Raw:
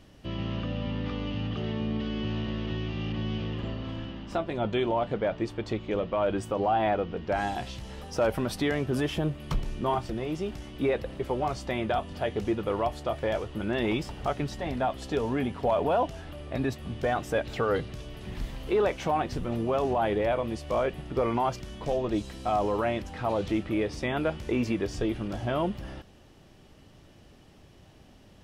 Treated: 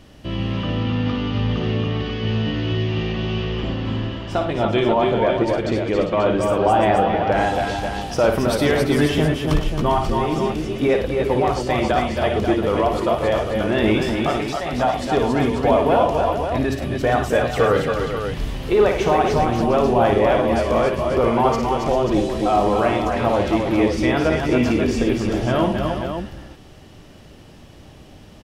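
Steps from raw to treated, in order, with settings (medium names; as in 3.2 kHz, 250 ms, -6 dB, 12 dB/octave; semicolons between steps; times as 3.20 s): 14.14–14.73 s: high-pass 420 Hz 6 dB/octave; on a send: multi-tap echo 57/101/267/280/400/537 ms -6/-12.5/-8/-6/-10/-7.5 dB; on the sum: trim +7.5 dB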